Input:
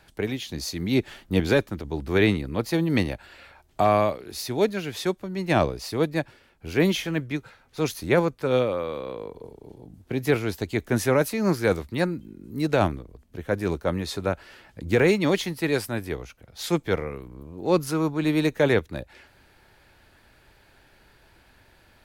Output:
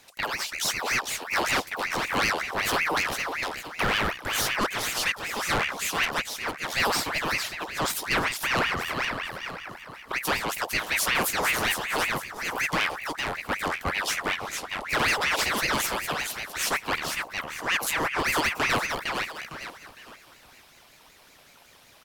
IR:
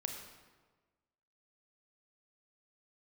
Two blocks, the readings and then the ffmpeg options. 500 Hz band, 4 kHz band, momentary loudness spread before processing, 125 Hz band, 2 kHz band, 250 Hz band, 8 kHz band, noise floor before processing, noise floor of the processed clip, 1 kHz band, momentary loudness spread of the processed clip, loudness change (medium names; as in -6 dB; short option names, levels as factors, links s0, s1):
-9.5 dB, +6.5 dB, 16 LU, -11.5 dB, +6.5 dB, -11.5 dB, +8.5 dB, -58 dBFS, -55 dBFS, +3.5 dB, 8 LU, -1.0 dB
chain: -filter_complex "[0:a]highshelf=f=2500:g=12,acrossover=split=120[s0][s1];[s1]aeval=exprs='0.562*(cos(1*acos(clip(val(0)/0.562,-1,1)))-cos(1*PI/2))+0.0447*(cos(6*acos(clip(val(0)/0.562,-1,1)))-cos(6*PI/2))':c=same[s2];[s0][s2]amix=inputs=2:normalize=0,asoftclip=type=hard:threshold=0.158,aecho=1:1:457|914|1371|1828:0.531|0.181|0.0614|0.0209,asoftclip=type=tanh:threshold=0.211,aeval=exprs='val(0)*sin(2*PI*1500*n/s+1500*0.6/5.3*sin(2*PI*5.3*n/s))':c=same"